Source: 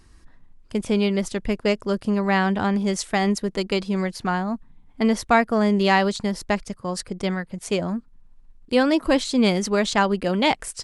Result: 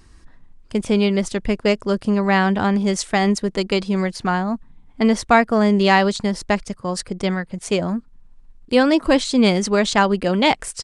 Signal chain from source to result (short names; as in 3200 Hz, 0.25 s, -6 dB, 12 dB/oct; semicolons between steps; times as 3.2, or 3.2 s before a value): downsampling 22050 Hz; gain +3.5 dB